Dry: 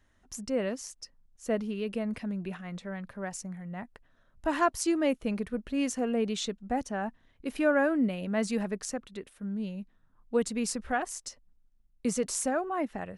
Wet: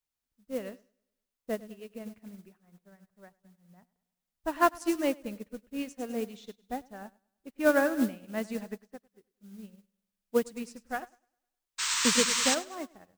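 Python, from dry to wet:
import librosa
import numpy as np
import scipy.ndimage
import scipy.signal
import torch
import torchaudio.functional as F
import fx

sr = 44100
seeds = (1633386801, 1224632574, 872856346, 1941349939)

p1 = fx.env_lowpass(x, sr, base_hz=470.0, full_db=-25.5)
p2 = fx.quant_dither(p1, sr, seeds[0], bits=8, dither='triangular')
p3 = p1 + (p2 * 10.0 ** (-7.0 / 20.0))
p4 = fx.spec_paint(p3, sr, seeds[1], shape='noise', start_s=11.78, length_s=0.77, low_hz=890.0, high_hz=8600.0, level_db=-23.0)
p5 = fx.mod_noise(p4, sr, seeds[2], snr_db=19)
p6 = p5 + fx.echo_feedback(p5, sr, ms=102, feedback_pct=55, wet_db=-10.5, dry=0)
y = fx.upward_expand(p6, sr, threshold_db=-42.0, expansion=2.5)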